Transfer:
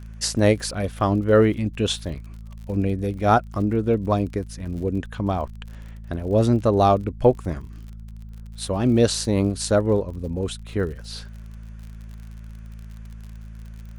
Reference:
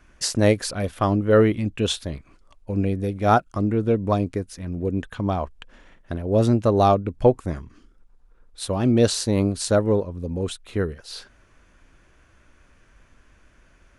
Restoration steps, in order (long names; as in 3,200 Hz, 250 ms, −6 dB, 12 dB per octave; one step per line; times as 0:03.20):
click removal
hum removal 54.8 Hz, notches 4